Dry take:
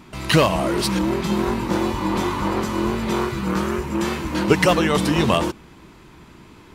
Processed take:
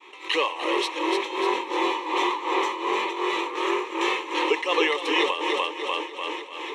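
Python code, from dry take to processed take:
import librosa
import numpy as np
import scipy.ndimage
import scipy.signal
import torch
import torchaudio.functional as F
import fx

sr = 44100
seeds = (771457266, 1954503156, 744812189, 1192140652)

p1 = fx.fade_in_head(x, sr, length_s=0.85)
p2 = scipy.signal.sosfilt(scipy.signal.butter(4, 410.0, 'highpass', fs=sr, output='sos'), p1)
p3 = p2 + fx.echo_feedback(p2, sr, ms=296, feedback_pct=54, wet_db=-8.0, dry=0)
p4 = p3 * (1.0 - 0.92 / 2.0 + 0.92 / 2.0 * np.cos(2.0 * np.pi * 2.7 * (np.arange(len(p3)) / sr)))
p5 = fx.lowpass_res(p4, sr, hz=4700.0, q=3.0)
p6 = fx.fixed_phaser(p5, sr, hz=980.0, stages=8)
y = fx.env_flatten(p6, sr, amount_pct=50)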